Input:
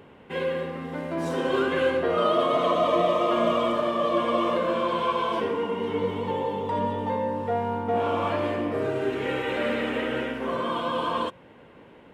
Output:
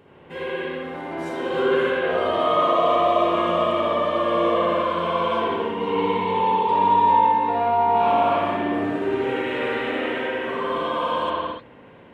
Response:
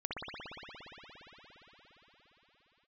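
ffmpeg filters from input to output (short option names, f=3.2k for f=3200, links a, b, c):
-filter_complex "[0:a]asettb=1/sr,asplit=3[a][b][c];[a]atrim=end=5.804[d];[b]atrim=start=5.8:end=8.13,asetpts=PTS-STARTPTS,afade=t=in:d=0.004:c=qsin,afade=t=out:st=2.326:d=0.004:c=qsin,equalizer=f=1k:t=o:w=0.33:g=12,equalizer=f=2.5k:t=o:w=0.33:g=10,equalizer=f=4k:t=o:w=0.33:g=10[e];[c]atrim=start=8.126[f];[d][e]acrossfade=d=0.004:c1=hsin:c2=qsin[g];[g][f]acrossfade=d=0.004:c1=qsin:c2=hsin[h];[1:a]atrim=start_sample=2205,afade=t=out:st=0.38:d=0.01,atrim=end_sample=17199[i];[h][i]afir=irnorm=-1:irlink=0"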